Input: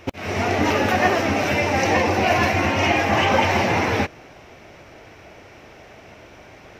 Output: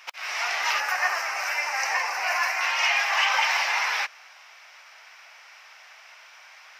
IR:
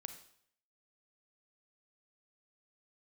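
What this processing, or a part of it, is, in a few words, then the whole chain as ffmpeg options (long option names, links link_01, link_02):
headphones lying on a table: -filter_complex "[0:a]highpass=frequency=1000:width=0.5412,highpass=frequency=1000:width=1.3066,equalizer=frequency=5000:width_type=o:width=0.31:gain=6,asettb=1/sr,asplit=3[link_01][link_02][link_03];[link_01]atrim=end=0.804[link_04];[link_02]atrim=start=0.8:end=2.61,asetpts=PTS-STARTPTS,afade=type=in:duration=0.004:curve=qsin,afade=type=out:start_time=1.806:duration=0.004:curve=qsin,equalizer=frequency=3500:width_type=o:width=0.67:gain=-13[link_05];[link_03]atrim=start=2.606[link_06];[link_04][link_05]acrossfade=duration=0.004:curve1=hsin:curve2=qsin[link_07];[link_07][link_06]acrossfade=duration=0.004:curve1=qsin:curve2=hsin"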